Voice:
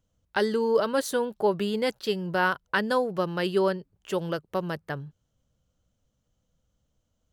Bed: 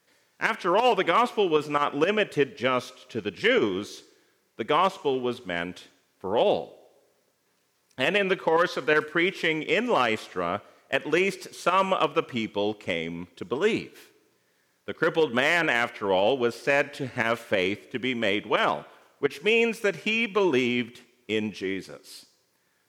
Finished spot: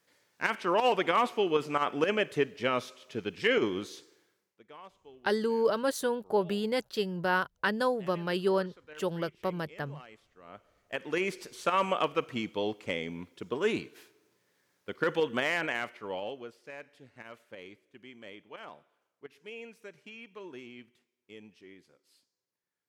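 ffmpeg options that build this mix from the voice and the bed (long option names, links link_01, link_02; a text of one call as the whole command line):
ffmpeg -i stem1.wav -i stem2.wav -filter_complex "[0:a]adelay=4900,volume=-3.5dB[link_01];[1:a]volume=18dB,afade=type=out:start_time=4.15:duration=0.46:silence=0.0707946,afade=type=in:start_time=10.41:duration=1.06:silence=0.0749894,afade=type=out:start_time=15.11:duration=1.45:silence=0.133352[link_02];[link_01][link_02]amix=inputs=2:normalize=0" out.wav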